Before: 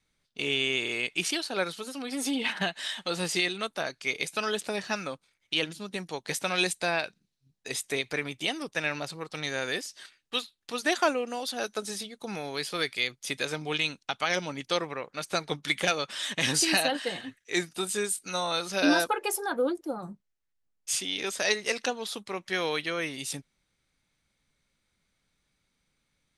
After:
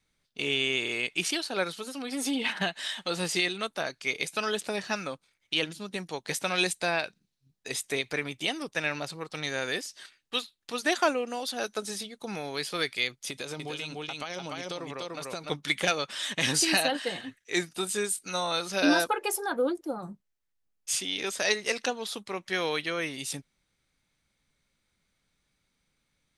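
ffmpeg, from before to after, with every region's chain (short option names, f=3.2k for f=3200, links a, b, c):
-filter_complex "[0:a]asettb=1/sr,asplit=3[a][b][c];[a]atrim=end=13.304[d];[b]atrim=start=13.3:end=15.5,asetpts=PTS-STARTPTS,afade=t=in:d=0.004:c=qsin,afade=t=out:st=2.196:d=0.004:c=qsin,equalizer=f=1.8k:t=o:w=0.84:g=-5.5,aecho=1:1:294:0.668,atrim=end_sample=97020,acompressor=threshold=-32dB:ratio=4:attack=3.2:release=140:knee=1:detection=peak[e];[c]atrim=start=15.496[f];[d][e]acrossfade=d=0.004:c1=hsin:c2=qsin[g];[g][f]acrossfade=d=0.004:c1=qsin:c2=hsin"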